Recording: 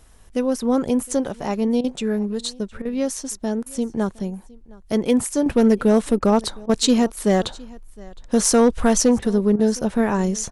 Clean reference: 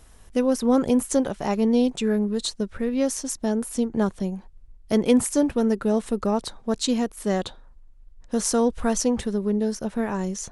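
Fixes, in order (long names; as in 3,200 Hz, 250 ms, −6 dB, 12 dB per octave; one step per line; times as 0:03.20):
clipped peaks rebuilt −8 dBFS
repair the gap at 0:01.81/0:02.82/0:03.63/0:06.19/0:06.66/0:09.19/0:09.56, 31 ms
echo removal 713 ms −23.5 dB
level correction −6.5 dB, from 0:05.46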